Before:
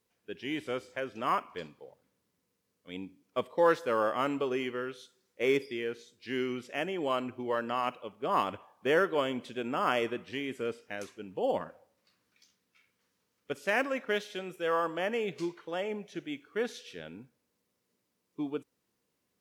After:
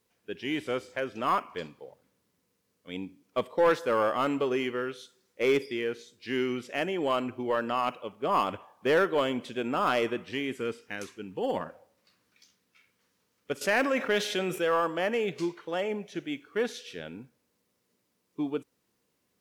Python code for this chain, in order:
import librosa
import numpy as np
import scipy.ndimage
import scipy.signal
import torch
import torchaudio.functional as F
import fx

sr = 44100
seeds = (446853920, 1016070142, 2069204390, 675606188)

y = fx.peak_eq(x, sr, hz=620.0, db=-10.5, octaves=0.43, at=(10.55, 11.57))
y = 10.0 ** (-19.5 / 20.0) * np.tanh(y / 10.0 ** (-19.5 / 20.0))
y = fx.env_flatten(y, sr, amount_pct=50, at=(13.61, 14.65))
y = y * librosa.db_to_amplitude(4.0)